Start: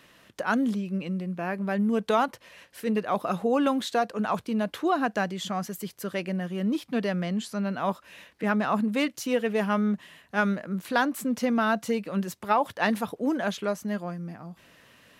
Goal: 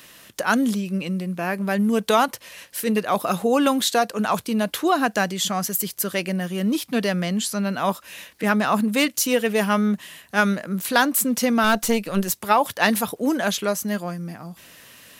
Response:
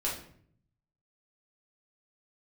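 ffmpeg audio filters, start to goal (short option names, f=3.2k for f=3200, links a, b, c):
-filter_complex "[0:a]crystalizer=i=3:c=0,asettb=1/sr,asplit=3[a][b][c];[a]atrim=end=11.644[d];[b]atrim=start=11.64:end=12.3,asetpts=PTS-STARTPTS,afade=t=in:d=0.004:c=qsin,afade=t=out:st=0.656:d=0.004:c=qsin,aeval=exprs='0.282*(cos(1*acos(clip(val(0)/0.282,-1,1)))-cos(1*PI/2))+0.0282*(cos(6*acos(clip(val(0)/0.282,-1,1)))-cos(6*PI/2))':c=same[e];[c]atrim=start=12.296[f];[d][e]acrossfade=d=0.004:c1=hsin:c2=qsin[g];[g][f]acrossfade=d=0.004:c1=qsin:c2=hsin,volume=4.5dB"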